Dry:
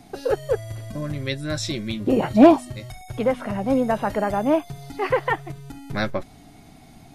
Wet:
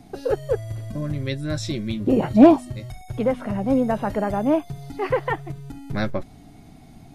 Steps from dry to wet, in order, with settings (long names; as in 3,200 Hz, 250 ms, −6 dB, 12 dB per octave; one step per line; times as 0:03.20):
low-shelf EQ 490 Hz +7 dB
level −4 dB